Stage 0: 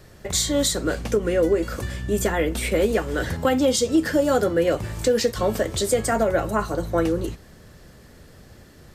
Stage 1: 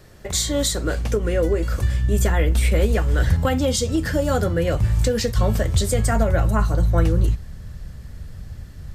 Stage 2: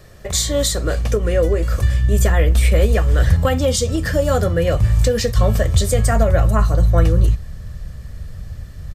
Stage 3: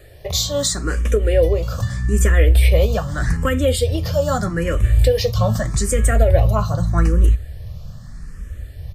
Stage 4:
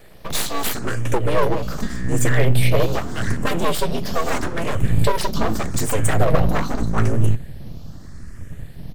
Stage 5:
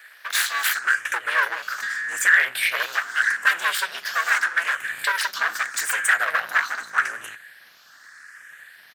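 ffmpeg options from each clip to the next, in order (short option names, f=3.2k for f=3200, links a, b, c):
-af "asubboost=boost=8:cutoff=120"
-af "aecho=1:1:1.7:0.32,volume=2.5dB"
-filter_complex "[0:a]asplit=2[a][b];[b]afreqshift=0.81[c];[a][c]amix=inputs=2:normalize=1,volume=2dB"
-af "aeval=exprs='abs(val(0))':c=same"
-af "highpass=f=1.6k:t=q:w=5.2"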